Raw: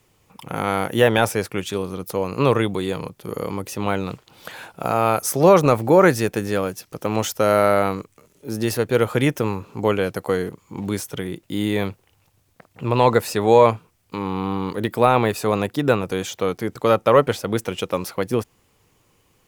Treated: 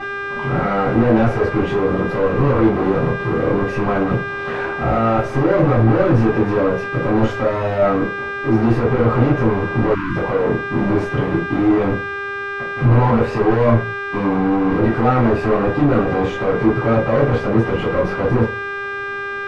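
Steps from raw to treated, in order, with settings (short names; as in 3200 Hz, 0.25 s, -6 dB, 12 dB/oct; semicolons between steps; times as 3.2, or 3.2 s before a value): buzz 400 Hz, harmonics 37, -38 dBFS -4 dB/oct; fuzz box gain 34 dB, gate -42 dBFS; LPF 1400 Hz 12 dB/oct; reverb RT60 0.35 s, pre-delay 4 ms, DRR -8 dB; spectral delete 9.94–10.17, 380–890 Hz; mismatched tape noise reduction encoder only; gain -11.5 dB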